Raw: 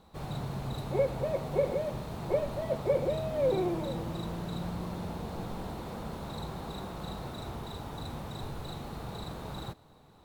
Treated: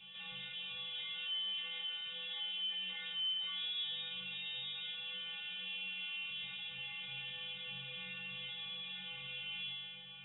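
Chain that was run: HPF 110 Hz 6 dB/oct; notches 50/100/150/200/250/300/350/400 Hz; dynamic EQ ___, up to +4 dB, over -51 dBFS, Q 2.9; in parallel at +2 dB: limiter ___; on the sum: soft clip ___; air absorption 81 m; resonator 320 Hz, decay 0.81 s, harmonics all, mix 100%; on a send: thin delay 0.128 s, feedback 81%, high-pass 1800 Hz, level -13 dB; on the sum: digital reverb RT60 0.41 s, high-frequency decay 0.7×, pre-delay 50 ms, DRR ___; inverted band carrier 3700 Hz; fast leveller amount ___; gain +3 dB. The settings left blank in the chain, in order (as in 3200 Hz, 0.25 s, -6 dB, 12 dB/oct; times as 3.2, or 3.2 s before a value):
1100 Hz, -24 dBFS, -29 dBFS, 17 dB, 50%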